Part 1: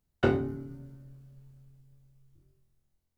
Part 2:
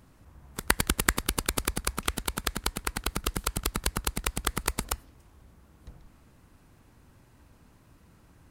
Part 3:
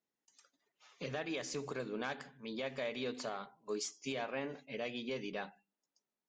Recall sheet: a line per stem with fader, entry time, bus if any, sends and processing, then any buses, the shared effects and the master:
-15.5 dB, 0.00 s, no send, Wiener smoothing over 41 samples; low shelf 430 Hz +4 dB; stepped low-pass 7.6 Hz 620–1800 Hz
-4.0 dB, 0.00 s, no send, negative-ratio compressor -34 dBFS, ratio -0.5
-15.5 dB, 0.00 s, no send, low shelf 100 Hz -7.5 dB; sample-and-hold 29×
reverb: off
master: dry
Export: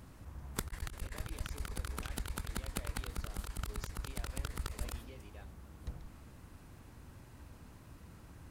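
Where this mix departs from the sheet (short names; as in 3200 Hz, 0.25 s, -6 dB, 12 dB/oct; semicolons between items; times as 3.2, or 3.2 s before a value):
stem 1: muted; stem 3: missing sample-and-hold 29×; master: extra bell 74 Hz +3.5 dB 1.2 oct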